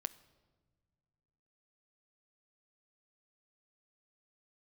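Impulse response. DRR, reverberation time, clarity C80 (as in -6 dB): 14.0 dB, no single decay rate, 20.0 dB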